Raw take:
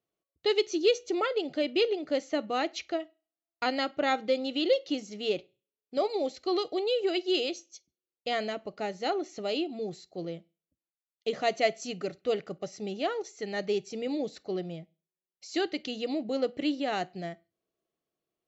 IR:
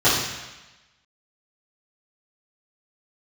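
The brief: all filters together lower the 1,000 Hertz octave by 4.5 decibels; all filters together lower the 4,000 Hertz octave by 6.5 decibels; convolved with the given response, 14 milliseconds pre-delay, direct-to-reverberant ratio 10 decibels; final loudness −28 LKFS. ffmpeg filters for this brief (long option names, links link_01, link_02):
-filter_complex "[0:a]equalizer=frequency=1000:width_type=o:gain=-7,equalizer=frequency=4000:width_type=o:gain=-8.5,asplit=2[link_01][link_02];[1:a]atrim=start_sample=2205,adelay=14[link_03];[link_02][link_03]afir=irnorm=-1:irlink=0,volume=-31dB[link_04];[link_01][link_04]amix=inputs=2:normalize=0,volume=4.5dB"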